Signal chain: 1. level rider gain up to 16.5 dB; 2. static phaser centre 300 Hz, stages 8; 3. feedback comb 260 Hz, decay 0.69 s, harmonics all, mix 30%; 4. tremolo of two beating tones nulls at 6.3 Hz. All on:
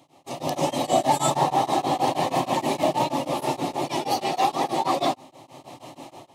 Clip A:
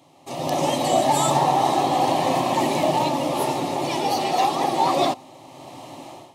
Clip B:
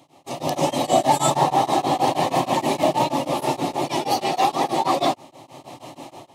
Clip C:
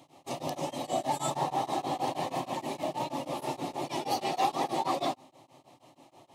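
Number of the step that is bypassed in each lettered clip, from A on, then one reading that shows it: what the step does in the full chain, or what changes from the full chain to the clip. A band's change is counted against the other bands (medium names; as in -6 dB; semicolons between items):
4, crest factor change -2.0 dB; 3, loudness change +3.0 LU; 1, momentary loudness spread change -9 LU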